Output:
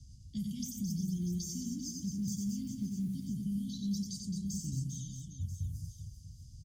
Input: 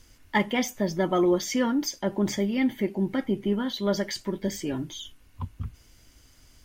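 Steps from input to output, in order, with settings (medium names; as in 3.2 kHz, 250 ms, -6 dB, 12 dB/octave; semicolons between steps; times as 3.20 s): inverse Chebyshev band-stop 600–1600 Hz, stop band 80 dB; level-controlled noise filter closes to 2.5 kHz, open at -33.5 dBFS; 1.11–3.15 s: companded quantiser 8-bit; peak limiter -32.5 dBFS, peak gain reduction 9 dB; high-pass 56 Hz; bass shelf 190 Hz +5 dB; reverse bouncing-ball echo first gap 90 ms, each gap 1.4×, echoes 5; three bands compressed up and down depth 40%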